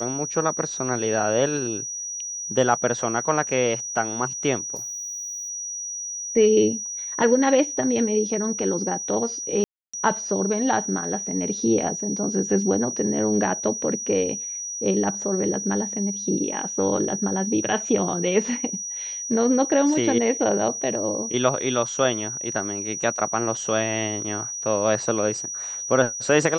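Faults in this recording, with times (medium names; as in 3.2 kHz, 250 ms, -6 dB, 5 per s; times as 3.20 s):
whine 5.8 kHz -29 dBFS
4.75–5.50 s: clipped -30.5 dBFS
9.64–9.94 s: dropout 295 ms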